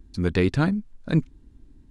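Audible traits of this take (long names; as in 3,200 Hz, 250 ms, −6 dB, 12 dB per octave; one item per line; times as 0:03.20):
background noise floor −54 dBFS
spectral slope −6.5 dB per octave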